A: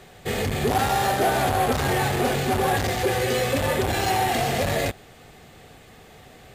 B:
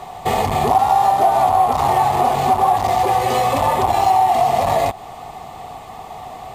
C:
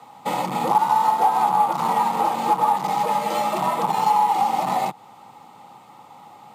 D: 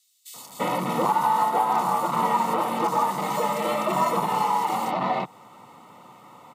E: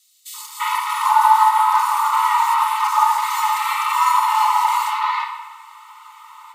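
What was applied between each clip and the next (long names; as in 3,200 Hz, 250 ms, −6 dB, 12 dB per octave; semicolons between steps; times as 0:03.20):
flat-topped bell 880 Hz +15 dB 1 octave; notch filter 1,600 Hz, Q 7.4; downward compressor 3 to 1, threshold −22 dBFS, peak gain reduction 13.5 dB; level +6.5 dB
frequency shifter +89 Hz; expander for the loud parts 1.5 to 1, over −29 dBFS; level −2.5 dB
notch comb filter 820 Hz; multiband delay without the direct sound highs, lows 340 ms, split 4,300 Hz; level +1.5 dB
linear-phase brick-wall high-pass 850 Hz; rectangular room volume 1,100 cubic metres, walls mixed, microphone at 1.4 metres; level +6.5 dB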